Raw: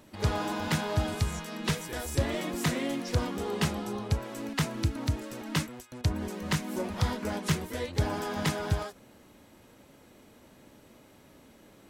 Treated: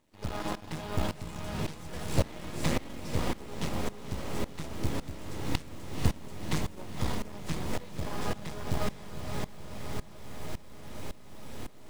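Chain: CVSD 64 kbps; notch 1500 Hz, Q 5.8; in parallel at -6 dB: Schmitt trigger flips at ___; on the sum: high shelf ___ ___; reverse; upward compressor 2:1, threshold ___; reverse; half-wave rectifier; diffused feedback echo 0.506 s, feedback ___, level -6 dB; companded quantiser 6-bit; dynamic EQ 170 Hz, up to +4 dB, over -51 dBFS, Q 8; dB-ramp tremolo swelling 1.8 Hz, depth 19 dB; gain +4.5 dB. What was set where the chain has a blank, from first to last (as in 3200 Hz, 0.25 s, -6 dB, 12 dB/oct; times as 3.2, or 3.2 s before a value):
-26 dBFS, 10000 Hz, -6.5 dB, -31 dBFS, 77%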